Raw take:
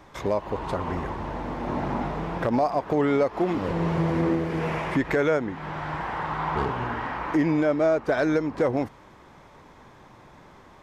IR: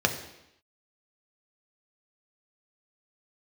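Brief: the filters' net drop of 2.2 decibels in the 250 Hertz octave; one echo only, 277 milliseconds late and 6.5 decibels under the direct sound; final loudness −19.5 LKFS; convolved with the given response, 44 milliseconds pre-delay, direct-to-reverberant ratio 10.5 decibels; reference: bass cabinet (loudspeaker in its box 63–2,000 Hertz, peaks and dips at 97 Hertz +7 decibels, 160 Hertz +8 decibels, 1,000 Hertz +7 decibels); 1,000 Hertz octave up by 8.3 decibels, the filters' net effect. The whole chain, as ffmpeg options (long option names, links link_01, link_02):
-filter_complex "[0:a]equalizer=frequency=250:width_type=o:gain=-7.5,equalizer=frequency=1000:width_type=o:gain=5.5,aecho=1:1:277:0.473,asplit=2[link_01][link_02];[1:a]atrim=start_sample=2205,adelay=44[link_03];[link_02][link_03]afir=irnorm=-1:irlink=0,volume=-23dB[link_04];[link_01][link_04]amix=inputs=2:normalize=0,highpass=frequency=63:width=0.5412,highpass=frequency=63:width=1.3066,equalizer=frequency=97:width_type=q:width=4:gain=7,equalizer=frequency=160:width_type=q:width=4:gain=8,equalizer=frequency=1000:width_type=q:width=4:gain=7,lowpass=frequency=2000:width=0.5412,lowpass=frequency=2000:width=1.3066,volume=2.5dB"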